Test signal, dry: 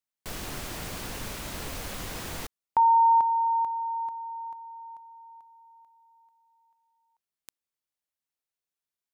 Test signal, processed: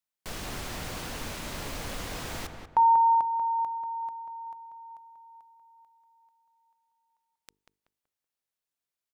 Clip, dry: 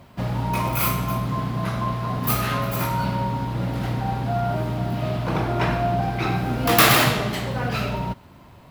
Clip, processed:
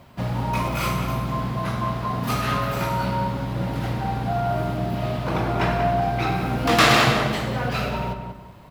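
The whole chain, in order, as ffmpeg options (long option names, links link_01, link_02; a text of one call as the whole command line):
ffmpeg -i in.wav -filter_complex "[0:a]bandreject=frequency=50:width_type=h:width=6,bandreject=frequency=100:width_type=h:width=6,bandreject=frequency=150:width_type=h:width=6,bandreject=frequency=200:width_type=h:width=6,bandreject=frequency=250:width_type=h:width=6,bandreject=frequency=300:width_type=h:width=6,bandreject=frequency=350:width_type=h:width=6,bandreject=frequency=400:width_type=h:width=6,bandreject=frequency=450:width_type=h:width=6,acrossover=split=8100[link_01][link_02];[link_02]acompressor=threshold=-45dB:ratio=4:attack=1:release=60[link_03];[link_01][link_03]amix=inputs=2:normalize=0,asplit=2[link_04][link_05];[link_05]adelay=189,lowpass=frequency=2200:poles=1,volume=-6dB,asplit=2[link_06][link_07];[link_07]adelay=189,lowpass=frequency=2200:poles=1,volume=0.33,asplit=2[link_08][link_09];[link_09]adelay=189,lowpass=frequency=2200:poles=1,volume=0.33,asplit=2[link_10][link_11];[link_11]adelay=189,lowpass=frequency=2200:poles=1,volume=0.33[link_12];[link_04][link_06][link_08][link_10][link_12]amix=inputs=5:normalize=0" out.wav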